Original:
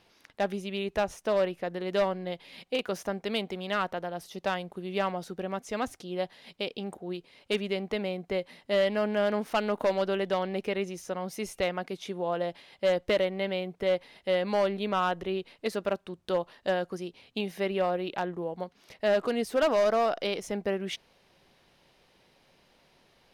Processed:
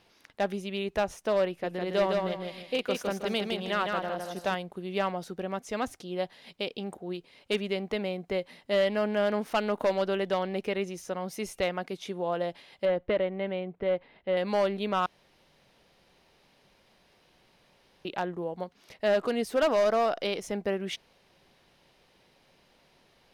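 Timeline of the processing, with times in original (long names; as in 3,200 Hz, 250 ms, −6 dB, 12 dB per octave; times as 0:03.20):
0:01.48–0:04.55: repeating echo 158 ms, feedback 32%, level −3.5 dB
0:12.85–0:14.37: high-frequency loss of the air 410 metres
0:15.06–0:18.05: fill with room tone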